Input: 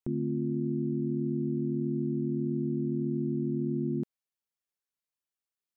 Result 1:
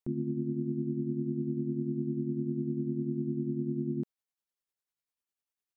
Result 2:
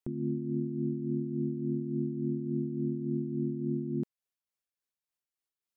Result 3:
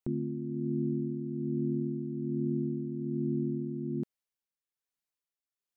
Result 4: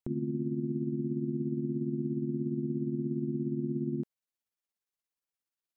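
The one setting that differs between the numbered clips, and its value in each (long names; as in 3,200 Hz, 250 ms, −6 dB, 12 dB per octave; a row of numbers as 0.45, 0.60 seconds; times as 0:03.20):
amplitude tremolo, speed: 10, 3.5, 1.2, 17 Hertz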